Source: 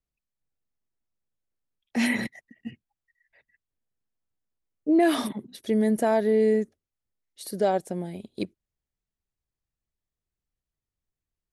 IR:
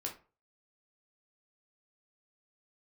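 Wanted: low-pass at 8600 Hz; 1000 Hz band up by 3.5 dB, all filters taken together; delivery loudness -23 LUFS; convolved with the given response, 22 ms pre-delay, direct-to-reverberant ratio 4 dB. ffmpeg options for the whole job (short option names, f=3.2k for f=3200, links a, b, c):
-filter_complex "[0:a]lowpass=8.6k,equalizer=f=1k:t=o:g=5.5,asplit=2[a][b];[1:a]atrim=start_sample=2205,adelay=22[c];[b][c]afir=irnorm=-1:irlink=0,volume=-4dB[d];[a][d]amix=inputs=2:normalize=0,volume=1dB"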